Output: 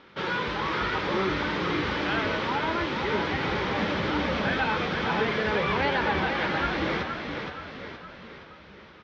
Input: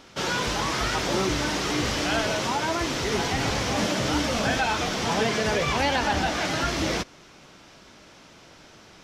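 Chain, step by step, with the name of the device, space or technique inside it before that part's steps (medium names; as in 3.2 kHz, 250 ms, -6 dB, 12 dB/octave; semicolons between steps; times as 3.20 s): frequency-shifting delay pedal into a guitar cabinet (frequency-shifting echo 470 ms, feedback 51%, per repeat -31 Hz, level -5.5 dB; cabinet simulation 80–3400 Hz, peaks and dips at 120 Hz -9 dB, 260 Hz -6 dB, 690 Hz -9 dB, 2.8 kHz -5 dB)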